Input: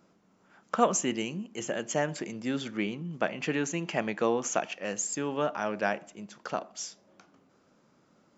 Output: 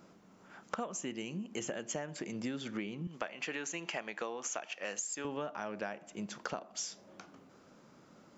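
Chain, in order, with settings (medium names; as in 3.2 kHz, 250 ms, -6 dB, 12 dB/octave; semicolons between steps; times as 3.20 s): 3.07–5.25 s: high-pass 770 Hz 6 dB/octave; compression 16:1, threshold -40 dBFS, peak gain reduction 23.5 dB; trim +5 dB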